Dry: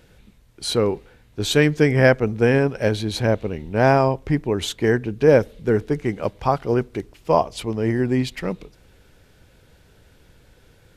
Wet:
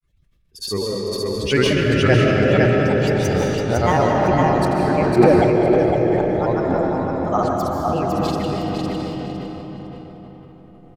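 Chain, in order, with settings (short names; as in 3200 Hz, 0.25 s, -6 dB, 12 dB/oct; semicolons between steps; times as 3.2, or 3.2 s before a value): per-bin expansion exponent 1.5; vibrato 9.9 Hz 26 cents; grains, pitch spread up and down by 7 st; vibrato 0.87 Hz 30 cents; feedback echo 0.506 s, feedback 24%, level -4 dB; reverb RT60 5.0 s, pre-delay 0.105 s, DRR -1.5 dB; sustainer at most 21 dB/s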